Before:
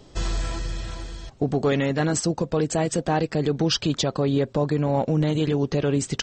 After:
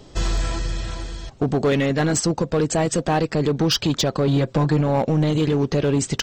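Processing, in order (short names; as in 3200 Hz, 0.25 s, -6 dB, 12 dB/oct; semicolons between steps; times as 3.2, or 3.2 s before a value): 4.27–4.81 comb 6 ms, depth 76%; in parallel at -4.5 dB: wavefolder -19 dBFS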